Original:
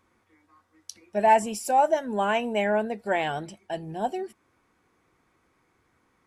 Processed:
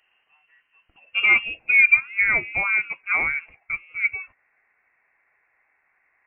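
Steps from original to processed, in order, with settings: high-pass sweep 140 Hz -> 800 Hz, 0.83–2.12 s; frequency inversion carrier 3 kHz

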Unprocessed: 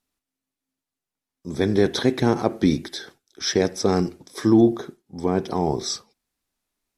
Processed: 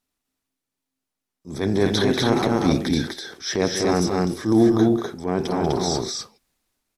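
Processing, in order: transient shaper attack -7 dB, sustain +6 dB; loudspeakers at several distances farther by 65 m -10 dB, 86 m -2 dB

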